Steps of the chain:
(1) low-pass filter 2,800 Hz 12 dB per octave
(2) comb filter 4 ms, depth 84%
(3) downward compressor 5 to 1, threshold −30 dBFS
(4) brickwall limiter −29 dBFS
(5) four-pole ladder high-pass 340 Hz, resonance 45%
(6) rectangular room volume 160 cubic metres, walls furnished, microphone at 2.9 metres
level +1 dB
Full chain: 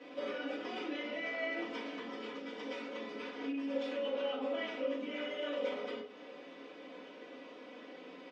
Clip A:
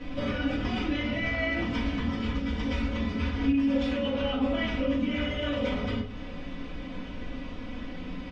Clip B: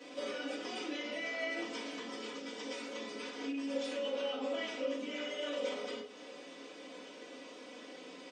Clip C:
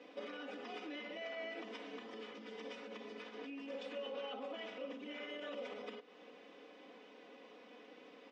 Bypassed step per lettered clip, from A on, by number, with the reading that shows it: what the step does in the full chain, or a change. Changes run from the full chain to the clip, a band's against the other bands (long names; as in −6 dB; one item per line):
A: 5, 250 Hz band +6.0 dB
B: 1, 4 kHz band +4.0 dB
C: 6, echo-to-direct ratio 5.0 dB to none audible